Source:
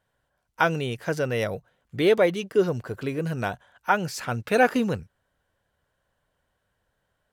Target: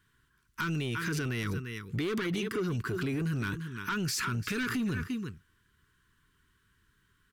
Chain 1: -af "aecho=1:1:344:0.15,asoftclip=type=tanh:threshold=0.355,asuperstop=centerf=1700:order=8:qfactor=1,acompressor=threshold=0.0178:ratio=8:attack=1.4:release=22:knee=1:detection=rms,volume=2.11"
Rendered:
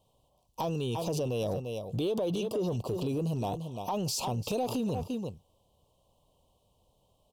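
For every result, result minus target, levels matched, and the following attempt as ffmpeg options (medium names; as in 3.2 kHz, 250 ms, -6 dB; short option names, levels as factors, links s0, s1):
2 kHz band -16.0 dB; saturation: distortion -11 dB
-af "aecho=1:1:344:0.15,asoftclip=type=tanh:threshold=0.355,asuperstop=centerf=650:order=8:qfactor=1,acompressor=threshold=0.0178:ratio=8:attack=1.4:release=22:knee=1:detection=rms,volume=2.11"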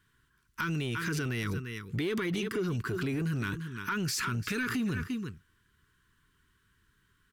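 saturation: distortion -11 dB
-af "aecho=1:1:344:0.15,asoftclip=type=tanh:threshold=0.133,asuperstop=centerf=650:order=8:qfactor=1,acompressor=threshold=0.0178:ratio=8:attack=1.4:release=22:knee=1:detection=rms,volume=2.11"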